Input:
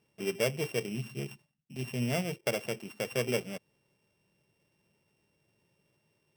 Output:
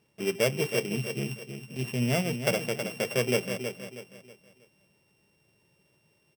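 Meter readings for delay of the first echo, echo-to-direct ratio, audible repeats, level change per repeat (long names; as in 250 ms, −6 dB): 320 ms, −7.5 dB, 3, −9.0 dB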